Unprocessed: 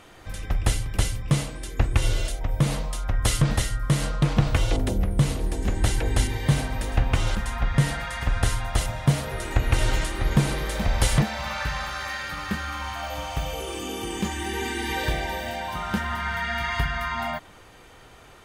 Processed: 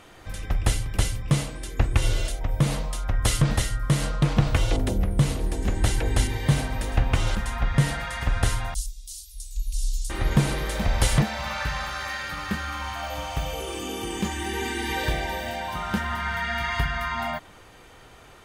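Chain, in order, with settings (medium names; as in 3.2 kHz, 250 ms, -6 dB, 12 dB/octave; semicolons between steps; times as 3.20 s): 8.74–10.10 s: inverse Chebyshev band-stop 130–1600 Hz, stop band 60 dB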